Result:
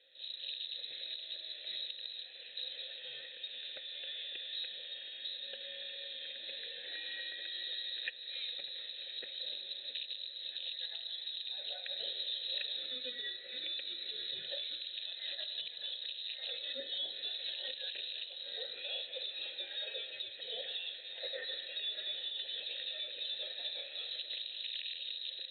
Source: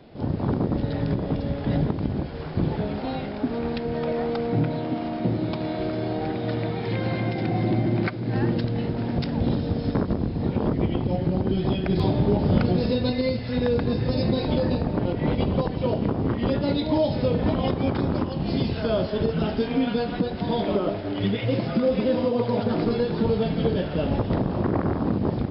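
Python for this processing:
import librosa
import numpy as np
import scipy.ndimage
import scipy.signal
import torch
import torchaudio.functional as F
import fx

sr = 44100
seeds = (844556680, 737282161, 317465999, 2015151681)

y = fx.freq_invert(x, sr, carrier_hz=4000)
y = fx.vowel_filter(y, sr, vowel='e')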